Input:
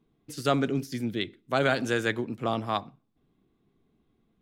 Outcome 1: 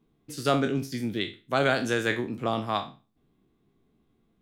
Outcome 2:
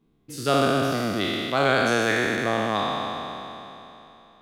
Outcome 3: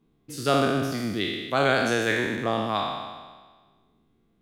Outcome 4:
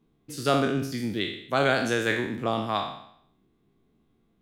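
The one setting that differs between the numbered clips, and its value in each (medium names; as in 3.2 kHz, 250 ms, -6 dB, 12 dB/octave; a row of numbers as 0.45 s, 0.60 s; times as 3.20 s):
spectral sustain, RT60: 0.32 s, 3.16 s, 1.44 s, 0.68 s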